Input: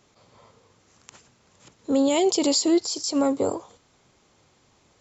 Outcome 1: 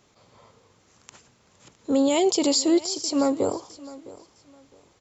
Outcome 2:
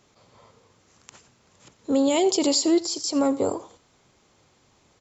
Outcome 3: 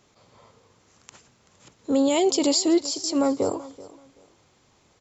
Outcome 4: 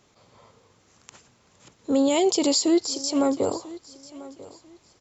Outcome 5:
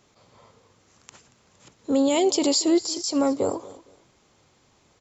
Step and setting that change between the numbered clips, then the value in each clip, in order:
feedback echo, time: 660, 87, 382, 993, 231 ms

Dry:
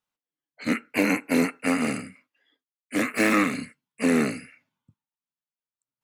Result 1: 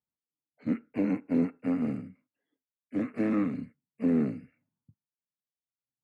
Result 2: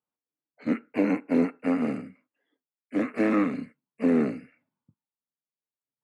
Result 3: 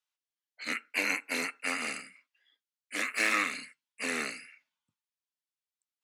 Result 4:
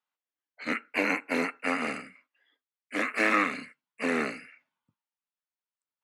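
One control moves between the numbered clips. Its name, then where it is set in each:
band-pass, frequency: 110, 330, 4200, 1400 Hz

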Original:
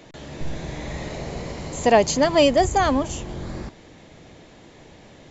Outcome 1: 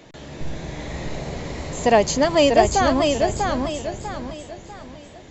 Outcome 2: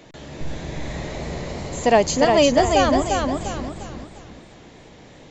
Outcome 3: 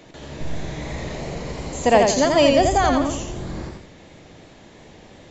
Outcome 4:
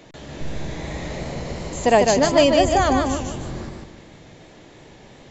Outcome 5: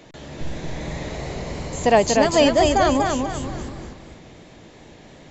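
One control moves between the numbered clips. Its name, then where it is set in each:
warbling echo, time: 644, 352, 85, 151, 240 ms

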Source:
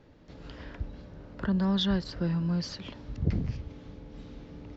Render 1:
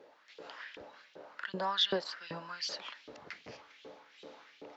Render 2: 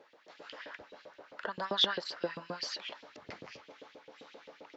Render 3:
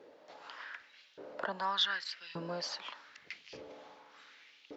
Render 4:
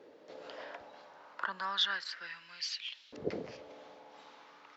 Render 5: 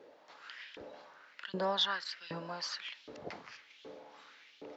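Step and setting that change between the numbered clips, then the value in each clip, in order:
LFO high-pass, rate: 2.6, 7.6, 0.85, 0.32, 1.3 Hz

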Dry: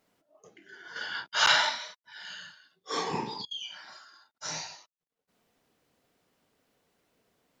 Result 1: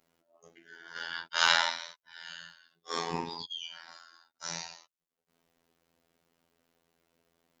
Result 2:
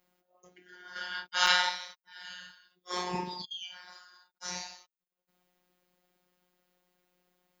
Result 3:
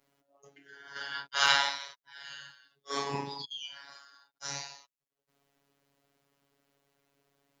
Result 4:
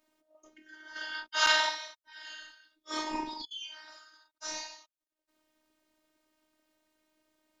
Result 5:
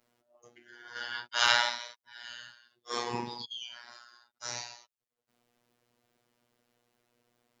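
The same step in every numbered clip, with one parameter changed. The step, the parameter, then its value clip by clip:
robotiser, frequency: 84, 180, 140, 310, 120 Hz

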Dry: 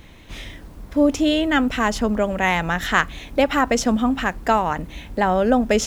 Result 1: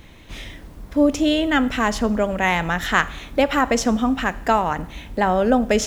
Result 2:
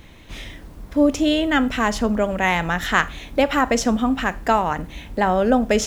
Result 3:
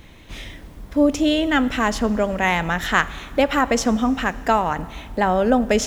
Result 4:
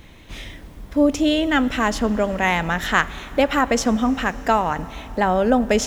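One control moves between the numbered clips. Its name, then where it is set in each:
Schroeder reverb, RT60: 0.73, 0.33, 1.9, 4.4 s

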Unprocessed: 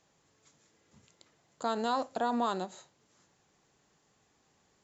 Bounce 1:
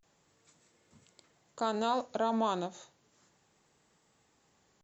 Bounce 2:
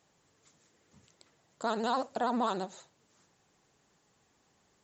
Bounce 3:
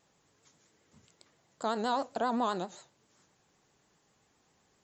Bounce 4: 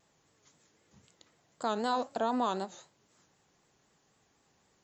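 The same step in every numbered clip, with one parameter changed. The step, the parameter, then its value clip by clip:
vibrato, rate: 0.32, 15, 7.6, 3.9 Hz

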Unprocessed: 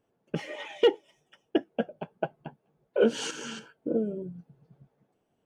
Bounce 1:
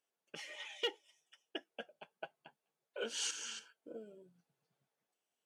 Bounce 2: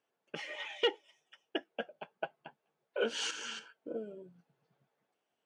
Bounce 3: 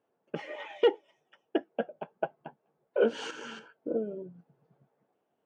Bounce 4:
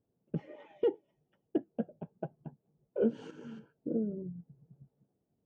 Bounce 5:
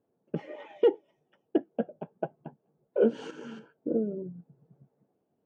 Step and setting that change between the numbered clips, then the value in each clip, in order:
band-pass, frequency: 7600, 2900, 920, 100, 300 Hz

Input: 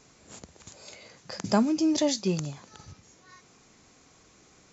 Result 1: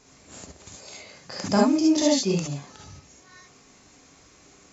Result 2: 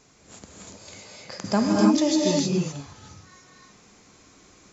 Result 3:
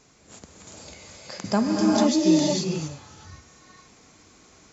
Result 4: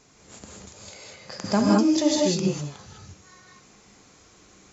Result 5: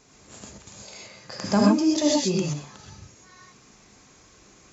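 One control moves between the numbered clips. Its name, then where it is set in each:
non-linear reverb, gate: 90, 340, 500, 230, 150 ms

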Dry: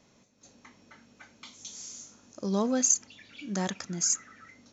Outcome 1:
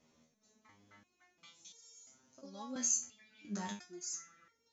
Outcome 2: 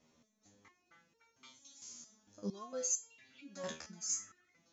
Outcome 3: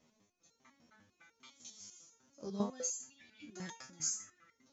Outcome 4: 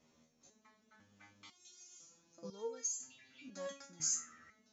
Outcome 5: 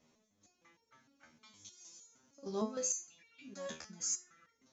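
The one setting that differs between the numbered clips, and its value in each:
stepped resonator, rate: 2.9, 4.4, 10, 2, 6.5 Hz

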